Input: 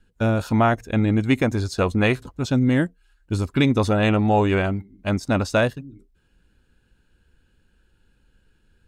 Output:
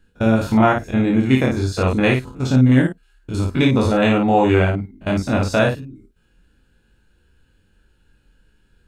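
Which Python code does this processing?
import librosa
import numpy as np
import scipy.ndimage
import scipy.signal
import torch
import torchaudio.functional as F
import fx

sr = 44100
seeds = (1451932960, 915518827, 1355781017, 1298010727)

y = fx.spec_steps(x, sr, hold_ms=50)
y = fx.room_early_taps(y, sr, ms=(23, 54), db=(-3.5, -4.5))
y = F.gain(torch.from_numpy(y), 2.0).numpy()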